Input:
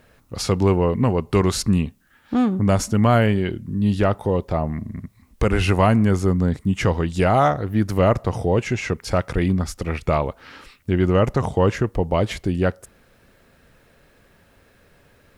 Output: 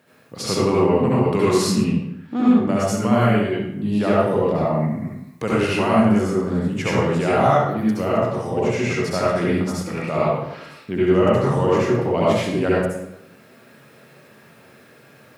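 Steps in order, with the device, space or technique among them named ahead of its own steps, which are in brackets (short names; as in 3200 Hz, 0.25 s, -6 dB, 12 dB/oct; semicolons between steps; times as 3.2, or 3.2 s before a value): far laptop microphone (reverb RT60 0.85 s, pre-delay 63 ms, DRR -7.5 dB; HPF 130 Hz 24 dB/oct; AGC gain up to 4 dB); 1.84–2.88 high shelf 6200 Hz -8 dB; gain -4 dB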